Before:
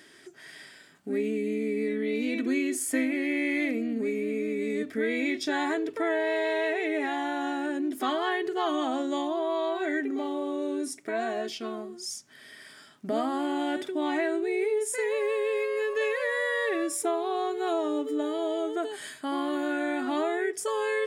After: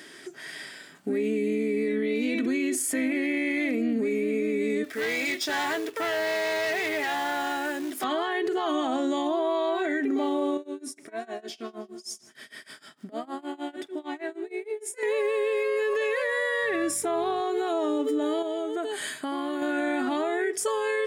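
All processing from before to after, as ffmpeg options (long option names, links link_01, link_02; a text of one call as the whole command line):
ffmpeg -i in.wav -filter_complex "[0:a]asettb=1/sr,asplit=3[link_01][link_02][link_03];[link_01]atrim=end=4.844[link_04];[link_02]atrim=start=4.84:end=8.04,asetpts=PTS-STARTPTS,afade=type=in:duration=0.004:curve=qsin,afade=type=out:start_time=3.196:duration=0.004:curve=qsin,equalizer=frequency=180:width_type=o:width=2.3:gain=-14.5,acrusher=bits=3:mode=log:mix=0:aa=0.000001,asoftclip=type=hard:threshold=-32dB[link_05];[link_03]atrim=start=8.036[link_06];[link_04][link_05]acrossfade=duration=0.004:curve1=hsin:curve2=qsin[link_07];[link_07][link_06]acrossfade=duration=0.004:curve1=qsin:curve2=hsin,asettb=1/sr,asplit=3[link_08][link_09][link_10];[link_08]atrim=end=10.574[link_11];[link_09]atrim=start=10.57:end=15.03,asetpts=PTS-STARTPTS,afade=type=in:duration=0.004:curve=qsin,afade=type=out:start_time=4.456:duration=0.004:curve=qsin,acompressor=threshold=-43dB:ratio=2:attack=3.2:release=140:knee=1:detection=peak,tremolo=f=6.5:d=0.95,aecho=1:1:157|314|471|628:0.1|0.053|0.0281|0.0149,atrim=end_sample=196686[link_12];[link_10]atrim=start=15.026[link_13];[link_11][link_12]acrossfade=duration=0.004:curve1=hsin:curve2=qsin[link_14];[link_14][link_13]acrossfade=duration=0.004:curve1=qsin:curve2=hsin,asettb=1/sr,asplit=3[link_15][link_16][link_17];[link_15]atrim=end=16.624[link_18];[link_16]atrim=start=16.62:end=17.41,asetpts=PTS-STARTPTS,afade=type=in:duration=0.004:curve=qsin,afade=type=out:start_time=0.786:duration=0.004:curve=qsin,aeval=exprs='val(0)+0.00355*(sin(2*PI*50*n/s)+sin(2*PI*2*50*n/s)/2+sin(2*PI*3*50*n/s)/3+sin(2*PI*4*50*n/s)/4+sin(2*PI*5*50*n/s)/5)':channel_layout=same,equalizer=frequency=1800:width_type=o:width=0.8:gain=4[link_19];[link_17]atrim=start=17.406[link_20];[link_18][link_19]acrossfade=duration=0.004:curve1=hsin:curve2=qsin[link_21];[link_21][link_20]acrossfade=duration=0.004:curve1=qsin:curve2=hsin,asettb=1/sr,asplit=3[link_22][link_23][link_24];[link_22]atrim=end=18.424[link_25];[link_23]atrim=start=18.42:end=19.62,asetpts=PTS-STARTPTS,afade=type=in:duration=0.004:curve=qsin,afade=type=out:start_time=1.196:duration=0.004:curve=qsin,bandreject=frequency=5300:width=9.6,acompressor=threshold=-35dB:ratio=4:attack=3.2:release=140:knee=1:detection=peak[link_26];[link_24]atrim=start=19.616[link_27];[link_25][link_26]acrossfade=duration=0.004:curve1=hsin:curve2=qsin[link_28];[link_28][link_27]acrossfade=duration=0.004:curve1=qsin:curve2=hsin,highpass=130,acontrast=89,alimiter=limit=-19.5dB:level=0:latency=1:release=53" out.wav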